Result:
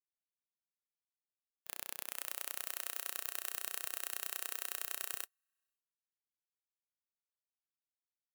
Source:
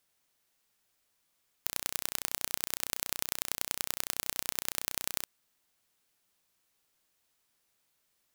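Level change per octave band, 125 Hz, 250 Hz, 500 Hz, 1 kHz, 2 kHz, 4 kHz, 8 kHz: under -35 dB, -14.0 dB, -7.5 dB, -6.5 dB, -4.5 dB, -9.0 dB, -7.0 dB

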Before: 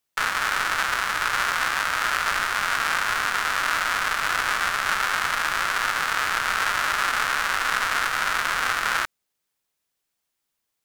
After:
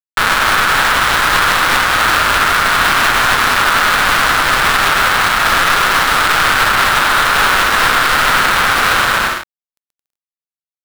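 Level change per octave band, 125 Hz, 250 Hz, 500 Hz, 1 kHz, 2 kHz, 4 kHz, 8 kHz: +19.0 dB, +18.0 dB, +15.5 dB, +12.5 dB, +11.5 dB, +13.5 dB, +11.0 dB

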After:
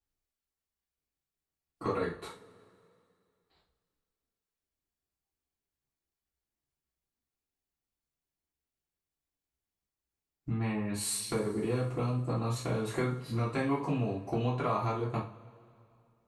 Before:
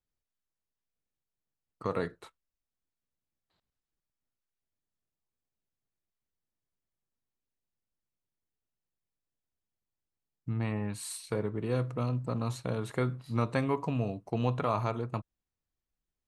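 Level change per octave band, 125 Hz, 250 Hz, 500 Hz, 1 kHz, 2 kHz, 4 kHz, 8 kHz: -0.5 dB, +0.5 dB, 0.0 dB, +0.5 dB, +0.5 dB, +4.0 dB, +6.5 dB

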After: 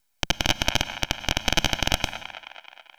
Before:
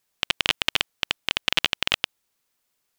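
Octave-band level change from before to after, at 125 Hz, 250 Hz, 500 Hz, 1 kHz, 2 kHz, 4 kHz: +13.0 dB, +9.5 dB, +6.0 dB, +4.5 dB, -1.0 dB, -1.5 dB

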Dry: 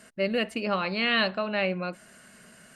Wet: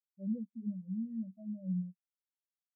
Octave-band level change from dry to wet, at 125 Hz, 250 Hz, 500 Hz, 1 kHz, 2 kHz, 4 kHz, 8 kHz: -3.0 dB, -4.5 dB, -30.0 dB, under -40 dB, under -40 dB, under -40 dB, no reading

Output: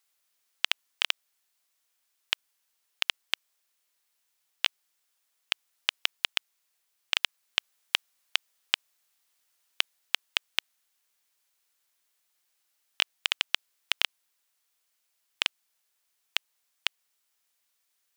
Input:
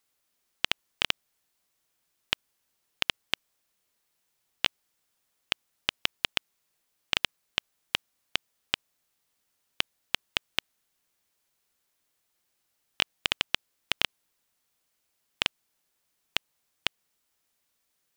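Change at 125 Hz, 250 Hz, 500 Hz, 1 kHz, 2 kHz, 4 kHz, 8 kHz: under -15 dB, -11.0 dB, -5.5 dB, -1.5 dB, +0.5 dB, +1.0 dB, +1.5 dB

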